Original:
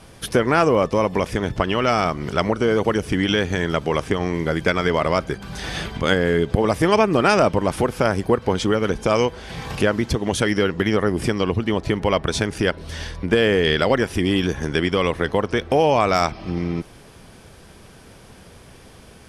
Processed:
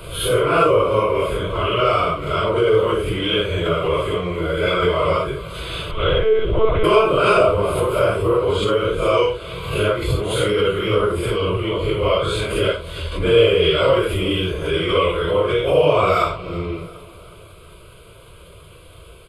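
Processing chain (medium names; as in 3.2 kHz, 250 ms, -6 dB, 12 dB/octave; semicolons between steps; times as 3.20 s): phase randomisation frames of 200 ms; 5.91–6.84 s: monotone LPC vocoder at 8 kHz 220 Hz; static phaser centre 1.2 kHz, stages 8; on a send: feedback delay 363 ms, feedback 52%, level -20 dB; on the sum: swell ahead of each attack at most 68 dB/s; trim +4 dB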